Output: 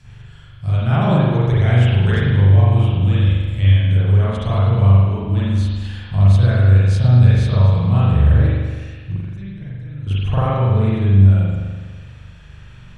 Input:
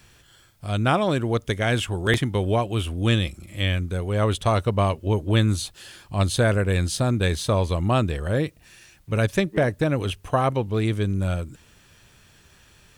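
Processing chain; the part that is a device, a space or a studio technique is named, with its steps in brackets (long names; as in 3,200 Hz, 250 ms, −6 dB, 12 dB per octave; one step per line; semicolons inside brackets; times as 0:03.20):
jukebox (low-pass filter 7,400 Hz 12 dB per octave; low shelf with overshoot 200 Hz +10 dB, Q 1.5; downward compressor, threshold −18 dBFS, peak gain reduction 12.5 dB)
0:09.12–0:10.07: guitar amp tone stack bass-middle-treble 6-0-2
spring reverb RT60 1.5 s, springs 41 ms, chirp 70 ms, DRR −10 dB
level −3 dB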